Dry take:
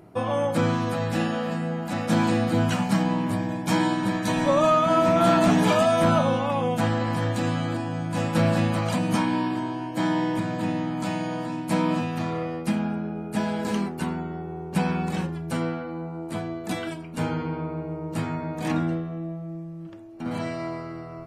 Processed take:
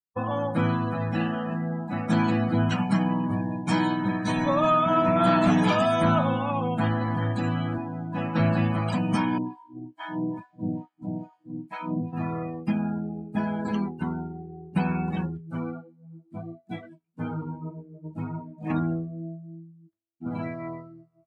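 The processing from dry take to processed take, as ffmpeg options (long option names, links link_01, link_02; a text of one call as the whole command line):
ffmpeg -i in.wav -filter_complex "[0:a]asettb=1/sr,asplit=3[link_01][link_02][link_03];[link_01]atrim=end=7.784[link_04];[link_02]atrim=start=7.78:end=8.4,asetpts=PTS-STARTPTS,afade=type=in:duration=0.004:curve=qsin,afade=type=out:start_time=0.616:duration=0.004:curve=qsin,highpass=150,lowpass=6300[link_05];[link_03]atrim=start=8.396[link_06];[link_04][link_05]acrossfade=duration=0.004:curve1=hsin:curve2=qsin[link_07];[link_07][link_06]acrossfade=duration=0.004:curve1=qsin:curve2=hsin,asettb=1/sr,asplit=3[link_08][link_09][link_10];[link_08]atrim=end=9.384[link_11];[link_09]atrim=start=9.38:end=12.13,asetpts=PTS-STARTPTS,afade=type=in:duration=0.004:curve=qsin,afade=type=out:start_time=2.746:duration=0.004:curve=qsin,acrossover=split=690[link_12][link_13];[link_12]aeval=exprs='val(0)*(1-1/2+1/2*cos(2*PI*2.3*n/s))':channel_layout=same[link_14];[link_13]aeval=exprs='val(0)*(1-1/2-1/2*cos(2*PI*2.3*n/s))':channel_layout=same[link_15];[link_14][link_15]amix=inputs=2:normalize=0[link_16];[link_10]atrim=start=12.126[link_17];[link_11][link_16]acrossfade=duration=0.004:curve1=hsin:curve2=qsin[link_18];[link_18][link_17]acrossfade=duration=0.004:curve1=qsin:curve2=hsin,asettb=1/sr,asplit=3[link_19][link_20][link_21];[link_19]atrim=end=15.374[link_22];[link_20]atrim=start=15.37:end=18.7,asetpts=PTS-STARTPTS,afade=type=in:duration=0.004:curve=qsin,afade=type=out:start_time=3.326:duration=0.004:curve=qsin,flanger=delay=16.5:depth=4:speed=1.6[link_23];[link_21]atrim=start=18.696[link_24];[link_22][link_23]acrossfade=duration=0.004:curve1=hsin:curve2=qsin[link_25];[link_25][link_24]acrossfade=duration=0.004:curve1=qsin:curve2=hsin,agate=range=-33dB:threshold=-29dB:ratio=3:detection=peak,afftdn=noise_reduction=27:noise_floor=-34,equalizer=frequency=510:width=1.6:gain=-5.5" out.wav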